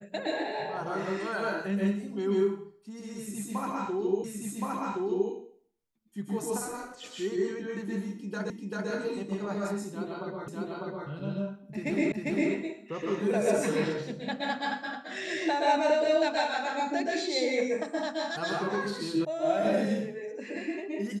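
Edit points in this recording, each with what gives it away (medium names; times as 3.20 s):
4.24 s: repeat of the last 1.07 s
8.50 s: repeat of the last 0.39 s
10.48 s: repeat of the last 0.6 s
12.12 s: repeat of the last 0.4 s
19.25 s: sound stops dead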